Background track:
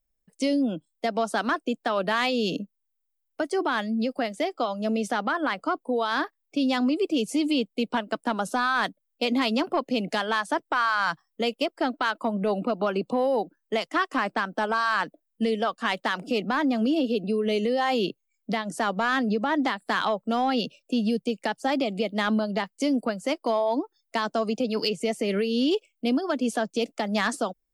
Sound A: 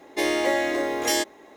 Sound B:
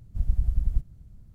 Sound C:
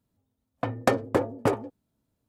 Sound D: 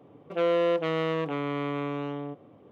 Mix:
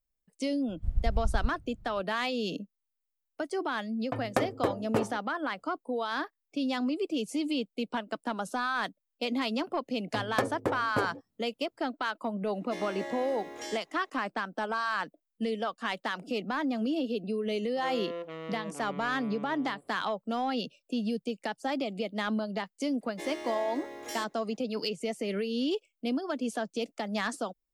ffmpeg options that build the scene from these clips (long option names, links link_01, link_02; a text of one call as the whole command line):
ffmpeg -i bed.wav -i cue0.wav -i cue1.wav -i cue2.wav -i cue3.wav -filter_complex "[3:a]asplit=2[link_01][link_02];[1:a]asplit=2[link_03][link_04];[0:a]volume=-6.5dB[link_05];[2:a]bass=frequency=250:gain=-2,treble=frequency=4000:gain=-10[link_06];[link_02]aresample=32000,aresample=44100[link_07];[link_03]acrossover=split=8600[link_08][link_09];[link_09]acompressor=threshold=-51dB:ratio=4:attack=1:release=60[link_10];[link_08][link_10]amix=inputs=2:normalize=0[link_11];[link_06]atrim=end=1.34,asetpts=PTS-STARTPTS,volume=-2.5dB,afade=type=in:duration=0.004:curve=hsin,afade=type=out:start_time=1.336:duration=0.004:curve=hsin,adelay=680[link_12];[link_01]atrim=end=2.28,asetpts=PTS-STARTPTS,volume=-5.5dB,afade=type=in:duration=0.004:curve=hsin,afade=type=out:start_time=2.276:duration=0.004:curve=hsin,adelay=153909S[link_13];[link_07]atrim=end=2.28,asetpts=PTS-STARTPTS,volume=-6.5dB,afade=type=in:duration=0.004:curve=hsin,afade=type=out:start_time=2.276:duration=0.004:curve=hsin,adelay=9510[link_14];[link_11]atrim=end=1.56,asetpts=PTS-STARTPTS,volume=-16.5dB,afade=type=in:duration=0.004:curve=hsin,afade=type=out:start_time=1.556:duration=0.004:curve=hsin,adelay=12540[link_15];[4:a]atrim=end=2.71,asetpts=PTS-STARTPTS,volume=-13dB,afade=type=in:duration=0.004:curve=hsin,afade=type=out:start_time=2.706:duration=0.004:curve=hsin,adelay=17460[link_16];[link_04]atrim=end=1.56,asetpts=PTS-STARTPTS,volume=-16.5dB,afade=type=in:duration=0.004:curve=hsin,afade=type=out:start_time=1.556:duration=0.004:curve=hsin,adelay=23010[link_17];[link_05][link_12][link_13][link_14][link_15][link_16][link_17]amix=inputs=7:normalize=0" out.wav